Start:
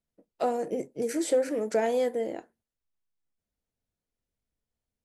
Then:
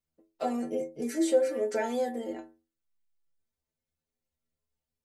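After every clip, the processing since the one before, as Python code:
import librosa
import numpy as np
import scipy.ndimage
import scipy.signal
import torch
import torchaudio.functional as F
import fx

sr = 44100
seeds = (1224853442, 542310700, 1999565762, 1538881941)

y = fx.stiff_resonator(x, sr, f0_hz=77.0, decay_s=0.42, stiffness=0.008)
y = y * 10.0 ** (8.0 / 20.0)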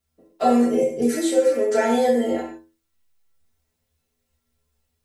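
y = fx.rider(x, sr, range_db=10, speed_s=0.5)
y = fx.rev_gated(y, sr, seeds[0], gate_ms=190, shape='falling', drr_db=-3.0)
y = y * 10.0 ** (7.0 / 20.0)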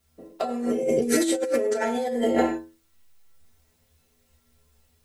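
y = fx.over_compress(x, sr, threshold_db=-27.0, ratio=-1.0)
y = y * 10.0 ** (2.5 / 20.0)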